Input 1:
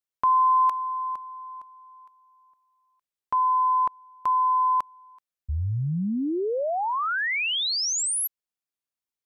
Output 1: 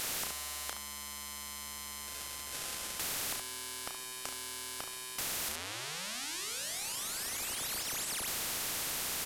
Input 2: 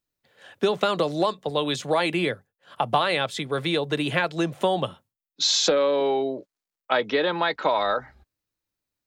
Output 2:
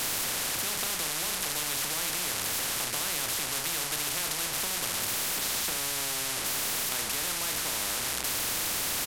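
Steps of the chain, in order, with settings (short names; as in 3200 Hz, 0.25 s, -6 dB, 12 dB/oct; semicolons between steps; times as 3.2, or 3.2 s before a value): delta modulation 64 kbps, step -22.5 dBFS; early reflections 33 ms -7.5 dB, 71 ms -11.5 dB; spectral compressor 10:1; gain -9 dB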